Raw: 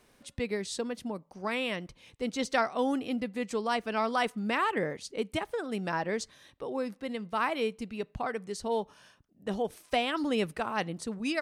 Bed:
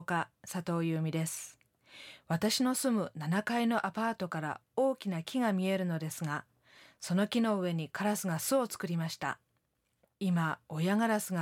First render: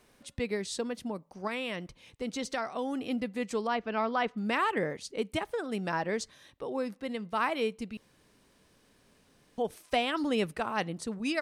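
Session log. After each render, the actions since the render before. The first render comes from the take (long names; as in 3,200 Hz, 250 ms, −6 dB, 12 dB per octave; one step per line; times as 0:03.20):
0:01.47–0:03.00: downward compressor 3 to 1, threshold −30 dBFS
0:03.67–0:04.37: high-frequency loss of the air 200 metres
0:07.97–0:09.58: fill with room tone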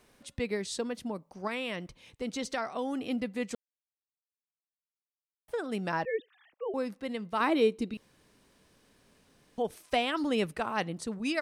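0:03.55–0:05.48: silence
0:06.05–0:06.74: three sine waves on the formant tracks
0:07.40–0:07.94: hollow resonant body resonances 330/3,800 Hz, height 13 dB, ringing for 25 ms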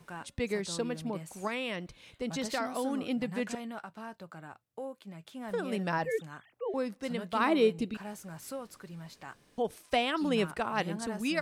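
mix in bed −11 dB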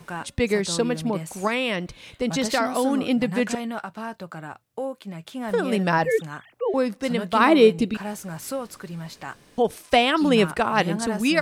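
level +10.5 dB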